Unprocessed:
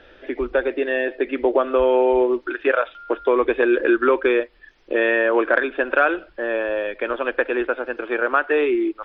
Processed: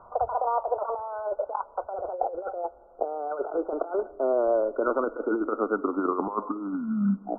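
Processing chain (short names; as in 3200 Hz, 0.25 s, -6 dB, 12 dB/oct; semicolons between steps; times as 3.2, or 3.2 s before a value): speed glide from 191% -> 54%; resonant low shelf 180 Hz -6.5 dB, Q 1.5; negative-ratio compressor -22 dBFS, ratio -0.5; in parallel at -11 dB: hard clip -15.5 dBFS, distortion -15 dB; on the sum: vibrato 5.8 Hz 30 cents; brick-wall FIR low-pass 1500 Hz; on a send at -20.5 dB: reverb RT60 2.9 s, pre-delay 3 ms; on the sum: gain -5.5 dB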